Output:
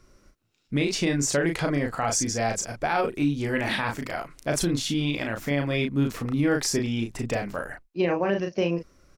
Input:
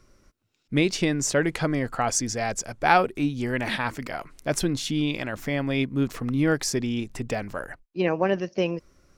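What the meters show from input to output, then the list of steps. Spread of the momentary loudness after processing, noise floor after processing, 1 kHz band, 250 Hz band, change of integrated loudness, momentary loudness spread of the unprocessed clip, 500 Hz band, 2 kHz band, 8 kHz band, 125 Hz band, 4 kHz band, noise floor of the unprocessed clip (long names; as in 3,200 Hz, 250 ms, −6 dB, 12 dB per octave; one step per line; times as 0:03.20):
6 LU, −63 dBFS, −3.5 dB, 0.0 dB, −0.5 dB, 8 LU, −0.5 dB, −1.0 dB, +0.5 dB, +0.5 dB, +0.5 dB, −68 dBFS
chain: double-tracking delay 35 ms −4.5 dB
brickwall limiter −14.5 dBFS, peak gain reduction 11.5 dB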